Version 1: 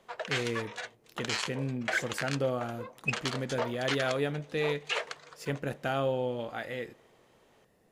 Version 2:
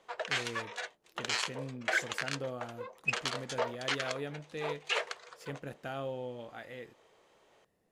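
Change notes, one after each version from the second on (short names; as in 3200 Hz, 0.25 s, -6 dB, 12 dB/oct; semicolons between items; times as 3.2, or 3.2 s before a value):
speech -7.5 dB; reverb: off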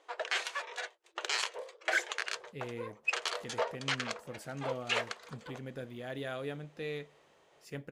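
speech: entry +2.25 s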